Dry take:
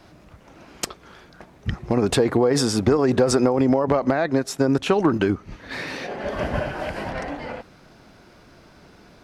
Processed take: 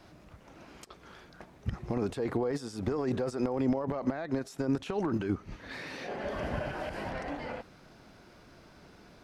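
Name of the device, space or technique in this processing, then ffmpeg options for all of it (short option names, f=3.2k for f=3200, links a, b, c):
de-esser from a sidechain: -filter_complex "[0:a]asplit=2[a][b];[b]highpass=f=6.7k:p=1,apad=whole_len=407322[c];[a][c]sidechaincompress=threshold=-41dB:ratio=6:attack=0.54:release=60,volume=-5.5dB"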